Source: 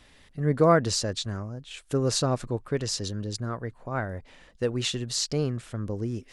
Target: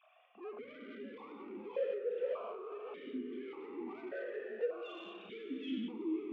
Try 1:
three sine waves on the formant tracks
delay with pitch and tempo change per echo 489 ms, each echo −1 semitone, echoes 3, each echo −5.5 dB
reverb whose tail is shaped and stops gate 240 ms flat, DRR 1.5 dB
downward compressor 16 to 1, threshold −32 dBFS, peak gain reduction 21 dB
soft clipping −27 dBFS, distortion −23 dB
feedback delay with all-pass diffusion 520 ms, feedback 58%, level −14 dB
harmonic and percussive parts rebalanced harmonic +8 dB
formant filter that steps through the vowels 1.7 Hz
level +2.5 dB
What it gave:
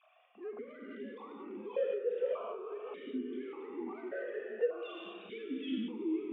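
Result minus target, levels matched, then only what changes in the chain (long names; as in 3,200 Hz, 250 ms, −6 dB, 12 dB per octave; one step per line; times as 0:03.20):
soft clipping: distortion −10 dB
change: soft clipping −35 dBFS, distortion −12 dB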